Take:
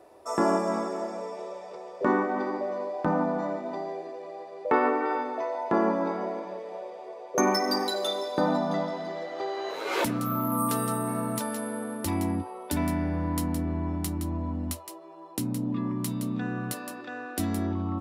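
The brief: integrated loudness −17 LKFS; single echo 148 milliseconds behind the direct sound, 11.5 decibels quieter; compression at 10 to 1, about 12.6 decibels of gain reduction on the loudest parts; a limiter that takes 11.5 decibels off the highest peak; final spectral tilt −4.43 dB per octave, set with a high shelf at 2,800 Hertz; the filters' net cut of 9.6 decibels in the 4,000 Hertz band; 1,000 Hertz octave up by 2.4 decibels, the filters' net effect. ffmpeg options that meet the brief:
ffmpeg -i in.wav -af "equalizer=frequency=1000:width_type=o:gain=4,highshelf=frequency=2800:gain=-5.5,equalizer=frequency=4000:width_type=o:gain=-7.5,acompressor=threshold=-31dB:ratio=10,alimiter=level_in=4.5dB:limit=-24dB:level=0:latency=1,volume=-4.5dB,aecho=1:1:148:0.266,volume=20.5dB" out.wav

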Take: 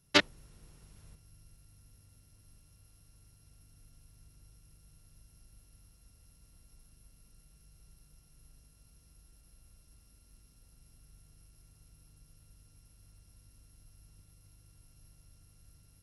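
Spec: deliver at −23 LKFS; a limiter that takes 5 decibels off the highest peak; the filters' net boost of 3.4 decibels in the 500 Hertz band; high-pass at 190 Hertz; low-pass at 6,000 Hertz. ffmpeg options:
ffmpeg -i in.wav -af "highpass=190,lowpass=6000,equalizer=frequency=500:width_type=o:gain=4.5,volume=9.5dB,alimiter=limit=-5dB:level=0:latency=1" out.wav

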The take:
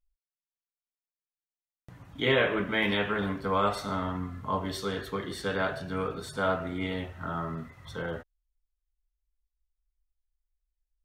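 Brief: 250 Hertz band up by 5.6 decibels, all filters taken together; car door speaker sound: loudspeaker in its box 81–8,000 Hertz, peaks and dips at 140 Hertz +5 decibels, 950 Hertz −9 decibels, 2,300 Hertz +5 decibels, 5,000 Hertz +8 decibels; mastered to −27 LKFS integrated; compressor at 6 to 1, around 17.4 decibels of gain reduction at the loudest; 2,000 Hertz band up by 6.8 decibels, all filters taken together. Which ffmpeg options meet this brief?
ffmpeg -i in.wav -af "equalizer=frequency=250:width_type=o:gain=7,equalizer=frequency=2000:width_type=o:gain=6,acompressor=threshold=-36dB:ratio=6,highpass=81,equalizer=frequency=140:width_type=q:width=4:gain=5,equalizer=frequency=950:width_type=q:width=4:gain=-9,equalizer=frequency=2300:width_type=q:width=4:gain=5,equalizer=frequency=5000:width_type=q:width=4:gain=8,lowpass=frequency=8000:width=0.5412,lowpass=frequency=8000:width=1.3066,volume=12dB" out.wav

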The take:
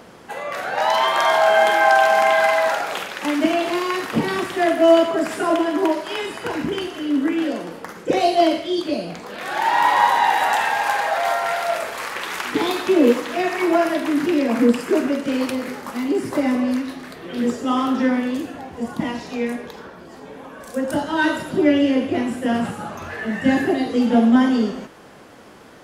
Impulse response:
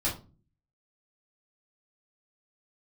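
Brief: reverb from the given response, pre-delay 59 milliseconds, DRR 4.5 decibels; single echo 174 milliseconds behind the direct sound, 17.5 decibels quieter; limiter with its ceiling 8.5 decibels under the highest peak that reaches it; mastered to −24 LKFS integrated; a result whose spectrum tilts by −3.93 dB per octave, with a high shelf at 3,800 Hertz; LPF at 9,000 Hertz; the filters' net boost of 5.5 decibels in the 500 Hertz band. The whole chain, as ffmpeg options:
-filter_complex "[0:a]lowpass=9000,equalizer=frequency=500:width_type=o:gain=8,highshelf=frequency=3800:gain=-5,alimiter=limit=-7dB:level=0:latency=1,aecho=1:1:174:0.133,asplit=2[link_01][link_02];[1:a]atrim=start_sample=2205,adelay=59[link_03];[link_02][link_03]afir=irnorm=-1:irlink=0,volume=-11.5dB[link_04];[link_01][link_04]amix=inputs=2:normalize=0,volume=-8dB"

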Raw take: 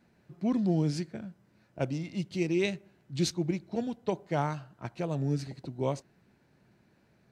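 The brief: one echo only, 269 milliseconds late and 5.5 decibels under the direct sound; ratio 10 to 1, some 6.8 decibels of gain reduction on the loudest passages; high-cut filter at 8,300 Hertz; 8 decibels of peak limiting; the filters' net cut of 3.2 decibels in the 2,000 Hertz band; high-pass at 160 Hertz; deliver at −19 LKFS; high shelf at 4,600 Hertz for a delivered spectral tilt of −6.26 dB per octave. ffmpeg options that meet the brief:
ffmpeg -i in.wav -af "highpass=160,lowpass=8300,equalizer=frequency=2000:width_type=o:gain=-5,highshelf=frequency=4600:gain=4,acompressor=threshold=-31dB:ratio=10,alimiter=level_in=5dB:limit=-24dB:level=0:latency=1,volume=-5dB,aecho=1:1:269:0.531,volume=20.5dB" out.wav

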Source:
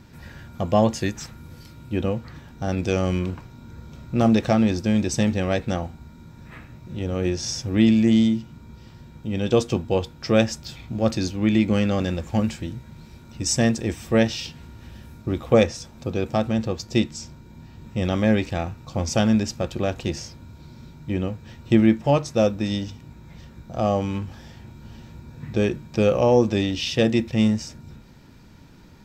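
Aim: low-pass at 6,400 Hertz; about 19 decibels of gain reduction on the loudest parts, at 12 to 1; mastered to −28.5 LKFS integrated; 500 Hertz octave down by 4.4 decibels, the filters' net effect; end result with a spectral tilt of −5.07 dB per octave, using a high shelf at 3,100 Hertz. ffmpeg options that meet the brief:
ffmpeg -i in.wav -af "lowpass=6400,equalizer=frequency=500:width_type=o:gain=-5.5,highshelf=frequency=3100:gain=4.5,acompressor=threshold=-33dB:ratio=12,volume=10.5dB" out.wav

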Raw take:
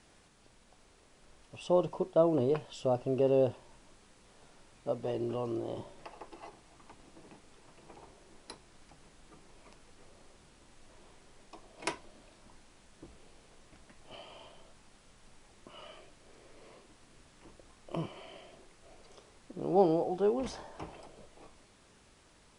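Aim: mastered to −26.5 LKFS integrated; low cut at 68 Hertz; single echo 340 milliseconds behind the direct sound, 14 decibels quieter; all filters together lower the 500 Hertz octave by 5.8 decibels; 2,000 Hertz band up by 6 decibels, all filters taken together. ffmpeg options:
ffmpeg -i in.wav -af "highpass=68,equalizer=frequency=500:width_type=o:gain=-8,equalizer=frequency=2000:width_type=o:gain=8,aecho=1:1:340:0.2,volume=11dB" out.wav

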